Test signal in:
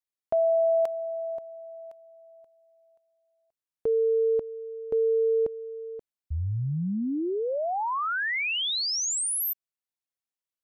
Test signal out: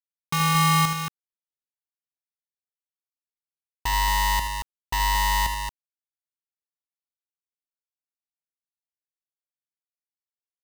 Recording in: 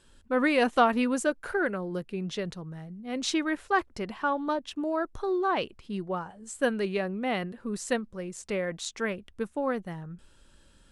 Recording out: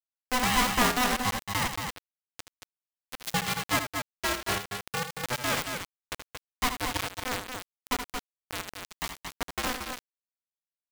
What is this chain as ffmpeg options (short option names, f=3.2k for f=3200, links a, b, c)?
-af "acrusher=bits=3:mix=0:aa=0.000001,aecho=1:1:75.8|227.4:0.355|0.501,aeval=exprs='val(0)*sgn(sin(2*PI*500*n/s))':c=same,volume=-3.5dB"